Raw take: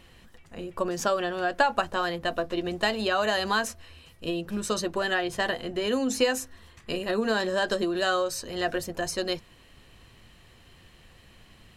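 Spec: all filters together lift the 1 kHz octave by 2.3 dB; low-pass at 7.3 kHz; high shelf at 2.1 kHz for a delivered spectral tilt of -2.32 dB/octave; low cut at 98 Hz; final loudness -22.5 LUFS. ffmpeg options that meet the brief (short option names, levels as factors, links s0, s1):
-af "highpass=98,lowpass=7300,equalizer=f=1000:t=o:g=4,highshelf=f=2100:g=-4,volume=1.78"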